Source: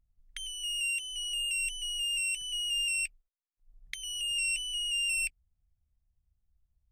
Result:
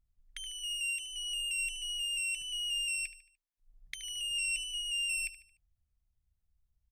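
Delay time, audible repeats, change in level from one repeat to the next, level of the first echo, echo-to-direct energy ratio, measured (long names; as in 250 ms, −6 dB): 74 ms, 3, −7.5 dB, −13.5 dB, −12.5 dB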